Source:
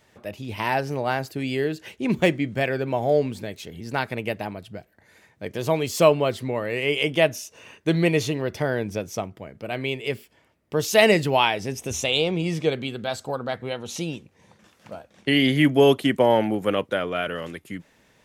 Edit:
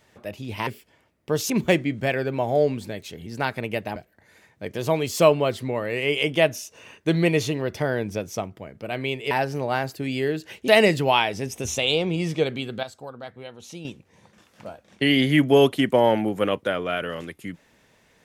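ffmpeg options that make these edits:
-filter_complex "[0:a]asplit=8[a][b][c][d][e][f][g][h];[a]atrim=end=0.672[i];[b]atrim=start=10.108:end=10.942[j];[c]atrim=start=2.038:end=4.502[k];[d]atrim=start=4.758:end=10.112[l];[e]atrim=start=0.668:end=2.042[m];[f]atrim=start=10.938:end=13.092[n];[g]atrim=start=13.088:end=14.112,asetpts=PTS-STARTPTS,volume=-9.5dB[o];[h]atrim=start=14.108[p];[i][j]acrossfade=d=0.004:c1=hsin:c2=hsin[q];[q][k]acrossfade=d=0.004:c1=hsin:c2=hsin[r];[r][l]acrossfade=d=0.004:c1=hsin:c2=hsin[s];[s][m]acrossfade=d=0.004:c1=hsin:c2=hsin[t];[t][n]acrossfade=d=0.004:c1=hsin:c2=hsin[u];[u][o]acrossfade=d=0.004:c1=hsin:c2=hsin[v];[v][p]acrossfade=d=0.004:c1=hsin:c2=hsin"

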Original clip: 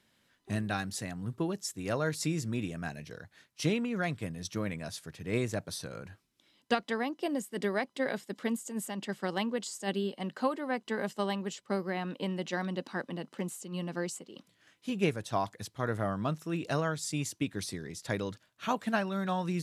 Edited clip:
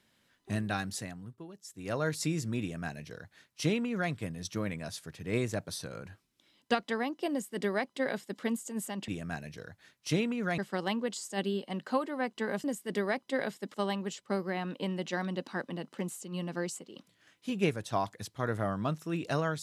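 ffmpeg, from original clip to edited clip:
-filter_complex "[0:a]asplit=7[a][b][c][d][e][f][g];[a]atrim=end=1.35,asetpts=PTS-STARTPTS,afade=t=out:st=0.94:d=0.41:silence=0.188365[h];[b]atrim=start=1.35:end=1.62,asetpts=PTS-STARTPTS,volume=-14.5dB[i];[c]atrim=start=1.62:end=9.082,asetpts=PTS-STARTPTS,afade=t=in:d=0.41:silence=0.188365[j];[d]atrim=start=2.608:end=4.112[k];[e]atrim=start=9.078:end=11.142[l];[f]atrim=start=7.308:end=8.412[m];[g]atrim=start=11.138[n];[h][i][j]concat=n=3:v=0:a=1[o];[o][k]acrossfade=d=0.004:c1=hsin:c2=hsin[p];[p][l]acrossfade=d=0.004:c1=hsin:c2=hsin[q];[q][m]acrossfade=d=0.004:c1=hsin:c2=hsin[r];[r][n]acrossfade=d=0.004:c1=hsin:c2=hsin"

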